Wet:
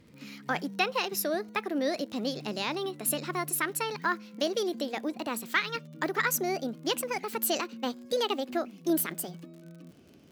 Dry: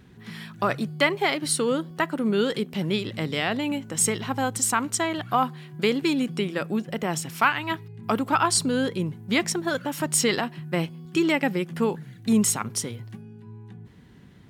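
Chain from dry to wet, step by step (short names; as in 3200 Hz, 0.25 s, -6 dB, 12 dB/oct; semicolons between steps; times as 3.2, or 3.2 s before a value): speed glide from 126% -> 155%; crackle 40/s -37 dBFS; gain -6 dB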